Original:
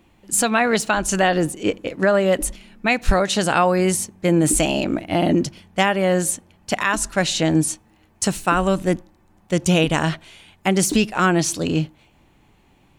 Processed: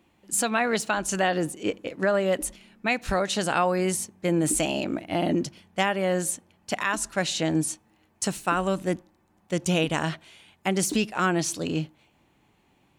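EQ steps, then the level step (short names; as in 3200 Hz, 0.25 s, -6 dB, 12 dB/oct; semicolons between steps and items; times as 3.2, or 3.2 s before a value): HPF 120 Hz 6 dB/oct; -6.0 dB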